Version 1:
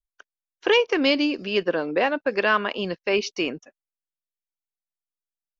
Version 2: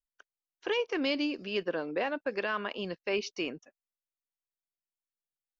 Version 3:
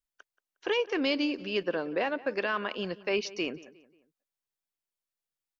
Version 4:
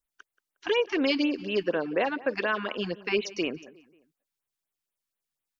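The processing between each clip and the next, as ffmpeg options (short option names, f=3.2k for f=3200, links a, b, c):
-af "alimiter=limit=-12dB:level=0:latency=1:release=26,volume=-8.5dB"
-filter_complex "[0:a]asplit=2[a][b];[b]adelay=179,lowpass=f=3.1k:p=1,volume=-19dB,asplit=2[c][d];[d]adelay=179,lowpass=f=3.1k:p=1,volume=0.44,asplit=2[e][f];[f]adelay=179,lowpass=f=3.1k:p=1,volume=0.44[g];[a][c][e][g]amix=inputs=4:normalize=0,volume=2dB"
-af "afftfilt=real='re*(1-between(b*sr/1024,450*pow(6100/450,0.5+0.5*sin(2*PI*4.1*pts/sr))/1.41,450*pow(6100/450,0.5+0.5*sin(2*PI*4.1*pts/sr))*1.41))':imag='im*(1-between(b*sr/1024,450*pow(6100/450,0.5+0.5*sin(2*PI*4.1*pts/sr))/1.41,450*pow(6100/450,0.5+0.5*sin(2*PI*4.1*pts/sr))*1.41))':win_size=1024:overlap=0.75,volume=3.5dB"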